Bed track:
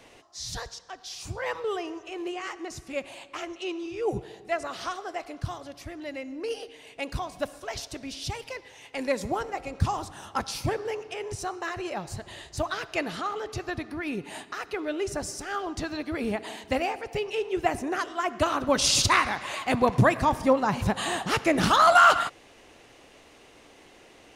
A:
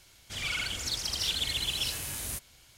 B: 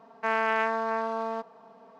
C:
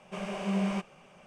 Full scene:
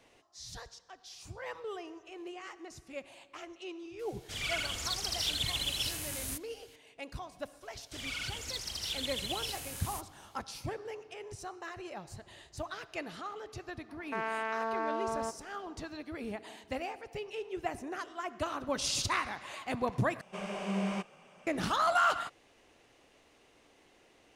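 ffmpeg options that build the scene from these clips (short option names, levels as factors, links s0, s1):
-filter_complex "[1:a]asplit=2[s0][s1];[0:a]volume=0.299[s2];[2:a]alimiter=limit=0.1:level=0:latency=1:release=71[s3];[3:a]lowshelf=f=110:g=-11[s4];[s2]asplit=2[s5][s6];[s5]atrim=end=20.214[s7];[s4]atrim=end=1.26,asetpts=PTS-STARTPTS,volume=0.841[s8];[s6]atrim=start=21.466[s9];[s0]atrim=end=2.77,asetpts=PTS-STARTPTS,volume=0.75,afade=t=in:d=0.004:c=hsin,afade=t=out:st=2.766:d=0.004:c=hsin,adelay=3990[s10];[s1]atrim=end=2.77,asetpts=PTS-STARTPTS,volume=0.473,afade=t=in:d=0.004:c=hsin,afade=t=out:st=2.766:d=0.004:c=hsin,adelay=336042S[s11];[s3]atrim=end=1.99,asetpts=PTS-STARTPTS,volume=0.668,afade=t=in:d=0.004:c=hsin,afade=t=out:st=1.986:d=0.004:c=hsin,adelay=13890[s12];[s7][s8]acrossfade=d=0.004:c1=hsin:c2=hsin[s13];[s13][s9]acrossfade=d=0.004:c1=hsin:c2=hsin[s14];[s14][s10][s11][s12]amix=inputs=4:normalize=0"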